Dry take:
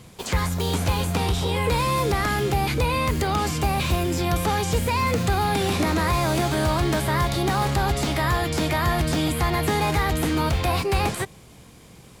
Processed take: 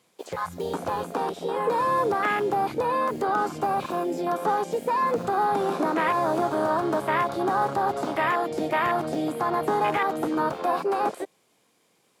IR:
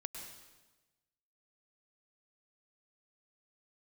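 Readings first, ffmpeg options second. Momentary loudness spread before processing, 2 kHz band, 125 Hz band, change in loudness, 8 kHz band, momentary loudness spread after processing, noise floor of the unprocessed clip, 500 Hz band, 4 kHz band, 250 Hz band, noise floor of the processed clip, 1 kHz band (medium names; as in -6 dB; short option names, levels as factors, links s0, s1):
2 LU, -3.5 dB, -17.0 dB, -2.5 dB, -14.5 dB, 6 LU, -48 dBFS, +0.5 dB, -13.0 dB, -4.0 dB, -67 dBFS, +1.5 dB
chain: -af "highpass=340,afwtdn=0.0562,volume=1.26"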